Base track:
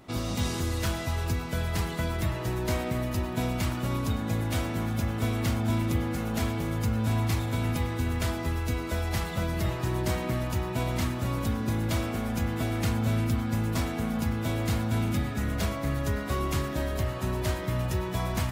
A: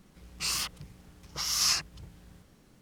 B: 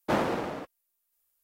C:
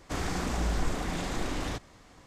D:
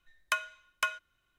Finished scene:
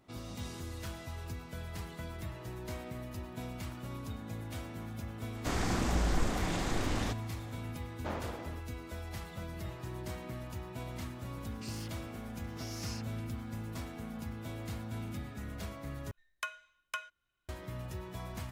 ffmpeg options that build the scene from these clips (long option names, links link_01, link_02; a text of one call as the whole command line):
ffmpeg -i bed.wav -i cue0.wav -i cue1.wav -i cue2.wav -i cue3.wav -filter_complex "[0:a]volume=-13dB[link_01];[2:a]aresample=16000,aresample=44100[link_02];[1:a]acompressor=threshold=-54dB:ratio=2:attack=13:release=83:knee=1:detection=peak[link_03];[link_01]asplit=2[link_04][link_05];[link_04]atrim=end=16.114[link_06];[4:a]atrim=end=1.38,asetpts=PTS-STARTPTS,volume=-8.5dB[link_07];[link_05]atrim=start=17.486[link_08];[3:a]atrim=end=2.26,asetpts=PTS-STARTPTS,volume=-1dB,afade=type=in:duration=0.004:curve=hsin,afade=type=out:start_time=2.256:duration=0.004:curve=hsin,adelay=5350[link_09];[link_02]atrim=end=1.43,asetpts=PTS-STARTPTS,volume=-13dB,afade=type=in:duration=0.004:curve=hsin,afade=type=out:start_time=1.426:duration=0.004:curve=hsin,adelay=7960[link_10];[link_03]atrim=end=2.81,asetpts=PTS-STARTPTS,volume=-5dB,afade=type=in:duration=0.004:curve=hsin,afade=type=out:start_time=2.806:duration=0.004:curve=hsin,adelay=11210[link_11];[link_06][link_07]acrossfade=duration=0.004:curve1=hsin:curve2=hsin[link_12];[link_12][link_08]acrossfade=duration=0.004:curve1=hsin:curve2=hsin[link_13];[link_13][link_09][link_10][link_11]amix=inputs=4:normalize=0" out.wav